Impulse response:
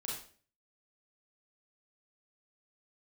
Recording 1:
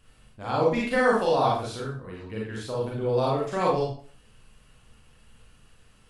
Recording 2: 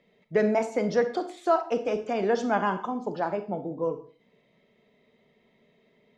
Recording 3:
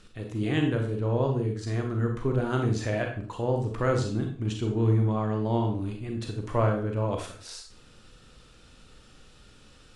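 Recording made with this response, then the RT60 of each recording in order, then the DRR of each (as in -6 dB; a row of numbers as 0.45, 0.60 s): 1; 0.45, 0.45, 0.45 s; -4.5, 9.0, 2.5 dB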